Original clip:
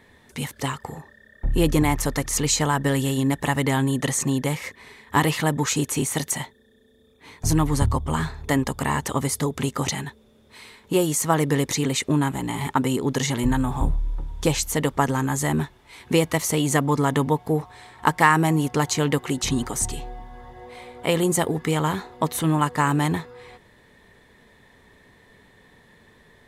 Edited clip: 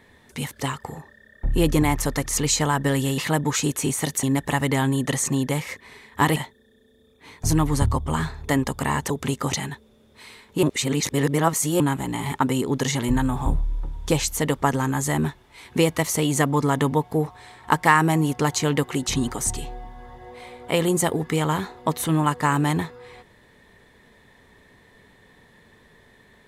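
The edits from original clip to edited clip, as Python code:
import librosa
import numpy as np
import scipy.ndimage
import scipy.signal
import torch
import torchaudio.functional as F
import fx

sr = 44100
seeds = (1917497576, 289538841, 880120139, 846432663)

y = fx.edit(x, sr, fx.move(start_s=5.31, length_s=1.05, to_s=3.18),
    fx.cut(start_s=9.1, length_s=0.35),
    fx.reverse_span(start_s=10.98, length_s=1.17), tone=tone)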